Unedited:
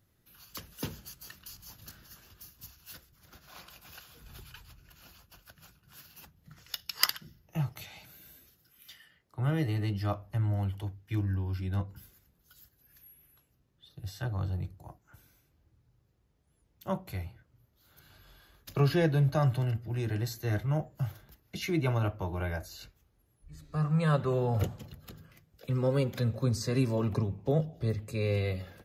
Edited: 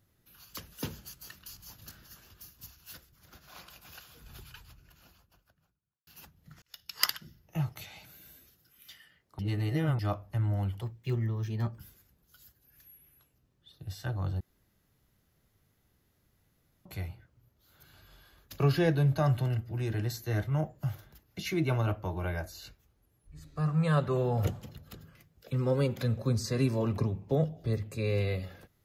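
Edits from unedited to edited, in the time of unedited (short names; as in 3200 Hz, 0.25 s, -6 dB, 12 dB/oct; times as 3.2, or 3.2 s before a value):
4.51–6.07 studio fade out
6.62–7.11 fade in linear
9.39–9.99 reverse
10.81–11.95 speed 117%
14.57–17.02 room tone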